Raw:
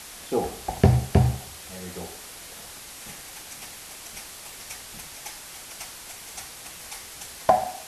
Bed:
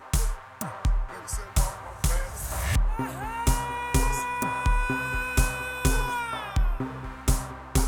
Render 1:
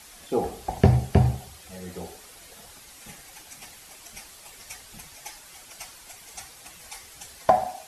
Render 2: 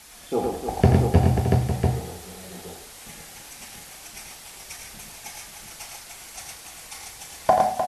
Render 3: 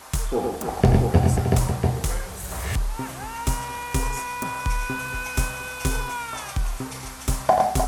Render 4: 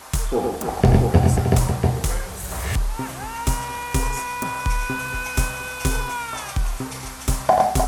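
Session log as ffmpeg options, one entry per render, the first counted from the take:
-af "afftdn=nr=8:nf=-42"
-filter_complex "[0:a]asplit=2[a][b];[b]adelay=37,volume=-11dB[c];[a][c]amix=inputs=2:normalize=0,aecho=1:1:85|109|304|540|685:0.422|0.596|0.398|0.398|0.668"
-filter_complex "[1:a]volume=-1dB[a];[0:a][a]amix=inputs=2:normalize=0"
-af "volume=2.5dB,alimiter=limit=-3dB:level=0:latency=1"

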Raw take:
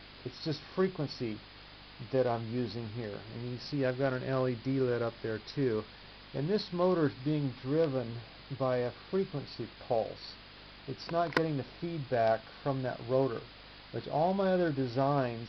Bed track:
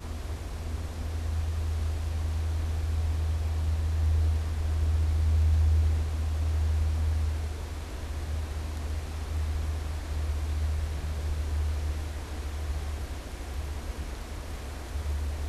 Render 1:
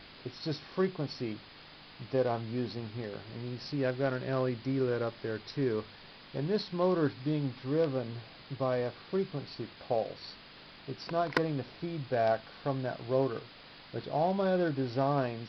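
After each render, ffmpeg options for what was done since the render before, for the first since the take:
-af "bandreject=f=50:t=h:w=4,bandreject=f=100:t=h:w=4"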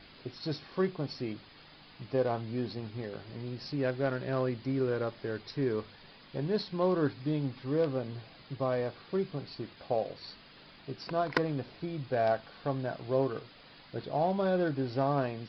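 -af "afftdn=nr=6:nf=-53"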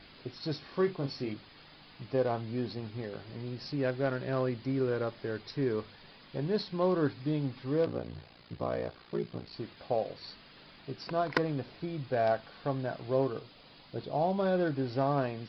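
-filter_complex "[0:a]asettb=1/sr,asplit=3[a][b][c];[a]atrim=end=0.614[d];[b]atrim=start=0.61:end=1.34,asetpts=PTS-STARTPTS,afade=t=in:d=0.004:c=qsin,afade=t=out:st=0.726:d=0.004:c=qsin,asplit=2[e][f];[f]adelay=29,volume=-7dB[g];[e][g]amix=inputs=2:normalize=0,atrim=end_sample=32193[h];[c]atrim=start=1.336[i];[d][h]acrossfade=d=0.004:c1=hsin:c2=qsin[j];[j][i]acrossfade=d=0.004:c1=qsin:c2=hsin,asettb=1/sr,asplit=3[k][l][m];[k]atrim=end=7.854[n];[l]atrim=start=7.85:end=9.54,asetpts=PTS-STARTPTS,afade=t=in:d=0.004:c=qsin,afade=t=out:st=1.686:d=0.004:c=qsin,aeval=exprs='val(0)*sin(2*PI*29*n/s)':c=same[o];[m]atrim=start=9.536[p];[n][o]acrossfade=d=0.004:c1=hsin:c2=qsin[q];[q][p]acrossfade=d=0.004:c1=qsin:c2=hsin,asettb=1/sr,asplit=3[r][s][t];[r]atrim=end=13.294[u];[s]atrim=start=13.29:end=14.38,asetpts=PTS-STARTPTS,afade=t=in:d=0.004:c=qsin,afade=t=out:st=1.086:d=0.004:c=qsin,equalizer=f=1.7k:w=1.8:g=-5.5[v];[t]atrim=start=14.376[w];[u][v]acrossfade=d=0.004:c1=hsin:c2=qsin[x];[x][w]acrossfade=d=0.004:c1=qsin:c2=hsin"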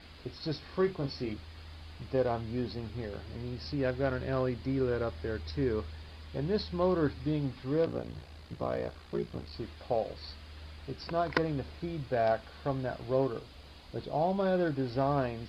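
-filter_complex "[1:a]volume=-19dB[a];[0:a][a]amix=inputs=2:normalize=0"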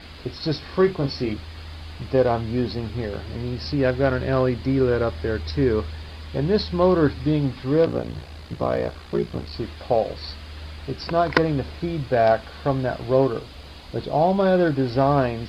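-af "volume=10.5dB"

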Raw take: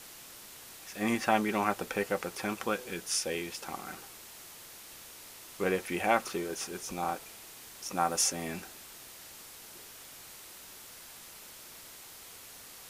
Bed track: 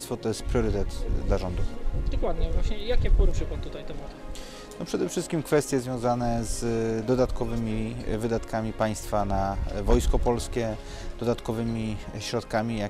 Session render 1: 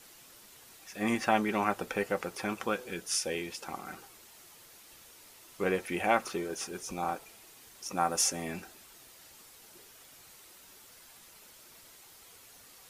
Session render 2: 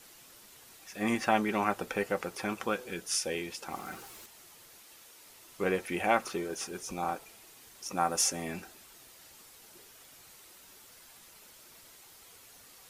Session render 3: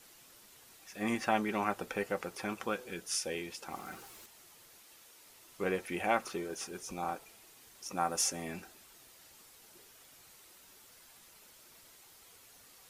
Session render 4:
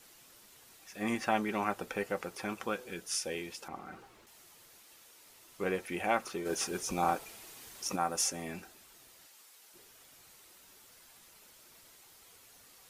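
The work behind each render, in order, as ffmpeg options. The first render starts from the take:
-af "afftdn=nr=7:nf=-50"
-filter_complex "[0:a]asettb=1/sr,asplit=3[a][b][c];[a]atrim=end=3.714[d];[b]atrim=start=3.71:end=4.26,asetpts=PTS-STARTPTS,afade=t=in:d=0.004:c=qsin,afade=t=out:st=0.546:d=0.004:c=qsin,aeval=exprs='val(0)+0.5*0.00335*sgn(val(0))':c=same[e];[c]atrim=start=4.256[f];[d][e]acrossfade=d=0.004:c1=hsin:c2=qsin[g];[g][f]acrossfade=d=0.004:c1=qsin:c2=hsin,asettb=1/sr,asplit=3[h][i][j];[h]atrim=end=4.834[k];[i]atrim=start=4.83:end=5.27,asetpts=PTS-STARTPTS,afade=t=in:d=0.004:c=qsin,afade=t=out:st=0.436:d=0.004:c=qsin,lowshelf=f=160:g=-10.5[l];[j]atrim=start=5.266[m];[k][l]acrossfade=d=0.004:c1=hsin:c2=qsin[n];[n][m]acrossfade=d=0.004:c1=qsin:c2=hsin"
-af "volume=-3.5dB"
-filter_complex "[0:a]asettb=1/sr,asplit=3[a][b][c];[a]atrim=end=3.684[d];[b]atrim=start=3.68:end=4.27,asetpts=PTS-STARTPTS,afade=t=in:d=0.004:c=qsin,afade=t=out:st=0.586:d=0.004:c=qsin,lowpass=f=1.6k:p=1[e];[c]atrim=start=4.266[f];[d][e]acrossfade=d=0.004:c1=hsin:c2=qsin[g];[g][f]acrossfade=d=0.004:c1=qsin:c2=hsin,asplit=3[h][i][j];[h]afade=t=out:st=6.45:d=0.02[k];[i]acontrast=85,afade=t=in:st=6.45:d=0.02,afade=t=out:st=7.95:d=0.02[l];[j]afade=t=in:st=7.95:d=0.02[m];[k][l][m]amix=inputs=3:normalize=0,asettb=1/sr,asplit=3[n][o][p];[n]atrim=end=9.264[q];[o]atrim=start=9.26:end=9.74,asetpts=PTS-STARTPTS,afade=t=in:d=0.004:c=qsin,afade=t=out:st=0.476:d=0.004:c=qsin,highpass=f=790:p=1[r];[p]atrim=start=9.736[s];[q][r]acrossfade=d=0.004:c1=hsin:c2=qsin[t];[t][s]acrossfade=d=0.004:c1=qsin:c2=hsin"

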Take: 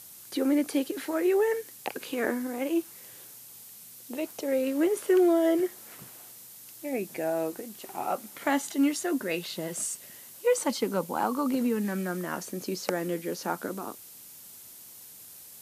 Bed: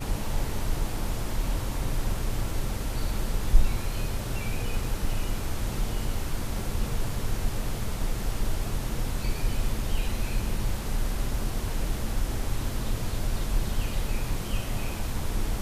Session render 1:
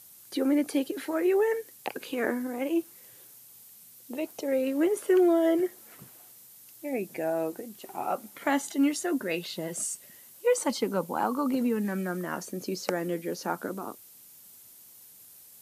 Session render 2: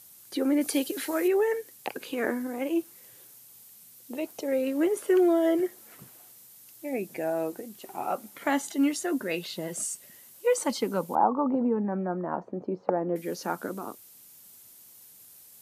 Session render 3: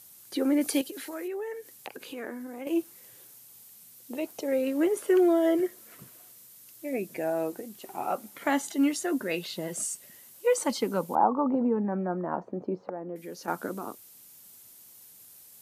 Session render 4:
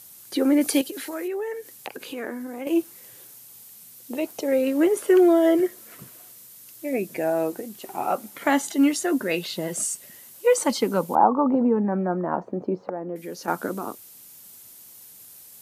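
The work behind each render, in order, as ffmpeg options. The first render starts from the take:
-af "afftdn=nr=6:nf=-48"
-filter_complex "[0:a]asettb=1/sr,asplit=3[a][b][c];[a]atrim=end=0.614[d];[b]atrim=start=0.61:end=1.28,asetpts=PTS-STARTPTS,afade=t=in:d=0.004:c=qsin,afade=t=out:st=0.666:d=0.004:c=qsin,highshelf=f=2.7k:g=9.5[e];[c]atrim=start=1.276[f];[d][e]acrossfade=d=0.004:c1=hsin:c2=qsin[g];[g][f]acrossfade=d=0.004:c1=qsin:c2=hsin,asettb=1/sr,asplit=3[h][i][j];[h]atrim=end=11.154[k];[i]atrim=start=11.15:end=13.16,asetpts=PTS-STARTPTS,afade=t=in:d=0.004:c=qsin,afade=t=out:st=2.006:d=0.004:c=qsin,lowpass=f=850:t=q:w=2.3[l];[j]atrim=start=13.156[m];[k][l]acrossfade=d=0.004:c1=hsin:c2=qsin[n];[n][m]acrossfade=d=0.004:c1=qsin:c2=hsin"
-filter_complex "[0:a]asettb=1/sr,asplit=3[a][b][c];[a]atrim=end=0.814[d];[b]atrim=start=0.81:end=2.67,asetpts=PTS-STARTPTS,afade=t=in:d=0.004:c=qsin,afade=t=out:st=1.856:d=0.004:c=qsin,acompressor=threshold=-41dB:ratio=2:attack=3.2:release=140:knee=1:detection=peak[e];[c]atrim=start=2.666[f];[d][e]acrossfade=d=0.004:c1=hsin:c2=qsin[g];[g][f]acrossfade=d=0.004:c1=qsin:c2=hsin,asettb=1/sr,asplit=3[h][i][j];[h]atrim=end=5.564[k];[i]atrim=start=5.56:end=7.17,asetpts=PTS-STARTPTS,afade=t=in:d=0.004:c=qsin,afade=t=out:st=1.606:d=0.004:c=qsin,asuperstop=centerf=820:order=4:qfactor=6[l];[j]atrim=start=7.166[m];[k][l]acrossfade=d=0.004:c1=hsin:c2=qsin[n];[n][m]acrossfade=d=0.004:c1=qsin:c2=hsin,asettb=1/sr,asplit=3[o][p][q];[o]atrim=end=12.844[r];[p]atrim=start=12.84:end=13.48,asetpts=PTS-STARTPTS,afade=t=in:d=0.004:c=qsin,afade=t=out:st=0.636:d=0.004:c=qsin,acompressor=threshold=-49dB:ratio=1.5:attack=3.2:release=140:knee=1:detection=peak[s];[q]atrim=start=13.476[t];[r][s]acrossfade=d=0.004:c1=hsin:c2=qsin[u];[u][t]acrossfade=d=0.004:c1=qsin:c2=hsin"
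-af "volume=5.5dB"

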